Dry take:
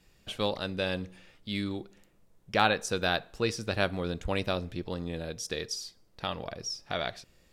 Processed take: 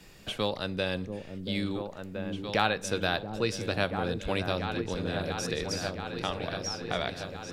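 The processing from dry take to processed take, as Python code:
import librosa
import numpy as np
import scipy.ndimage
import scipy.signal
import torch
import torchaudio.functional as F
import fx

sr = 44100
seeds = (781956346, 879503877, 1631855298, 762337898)

p1 = x + fx.echo_opening(x, sr, ms=681, hz=400, octaves=2, feedback_pct=70, wet_db=-6, dry=0)
y = fx.band_squash(p1, sr, depth_pct=40)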